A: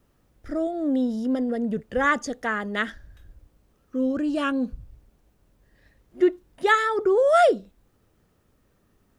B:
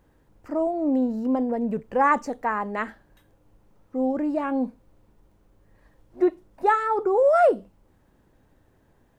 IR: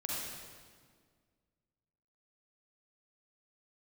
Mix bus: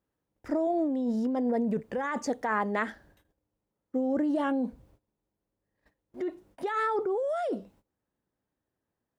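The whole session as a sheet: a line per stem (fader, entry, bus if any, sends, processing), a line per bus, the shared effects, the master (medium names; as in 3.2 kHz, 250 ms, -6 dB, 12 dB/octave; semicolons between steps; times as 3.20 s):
+0.5 dB, 0.00 s, no send, compression 2.5:1, threshold -26 dBFS, peak gain reduction 8.5 dB; peak limiter -22.5 dBFS, peak gain reduction 8 dB; auto duck -7 dB, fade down 0.85 s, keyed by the second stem
-5.5 dB, 0.00 s, no send, bass shelf 120 Hz +2 dB; compressor with a negative ratio -26 dBFS, ratio -1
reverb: none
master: high-pass 160 Hz 6 dB/octave; gate -58 dBFS, range -20 dB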